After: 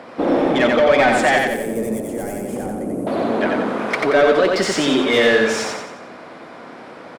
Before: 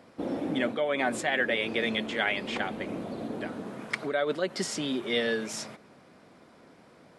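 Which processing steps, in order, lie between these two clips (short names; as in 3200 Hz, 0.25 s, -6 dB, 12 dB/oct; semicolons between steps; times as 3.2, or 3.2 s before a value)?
overdrive pedal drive 20 dB, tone 1500 Hz, clips at -13 dBFS; 1.38–3.07 EQ curve 200 Hz 0 dB, 590 Hz -8 dB, 1000 Hz -19 dB, 3600 Hz -30 dB, 9800 Hz +11 dB; feedback echo 90 ms, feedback 45%, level -3 dB; gain +7.5 dB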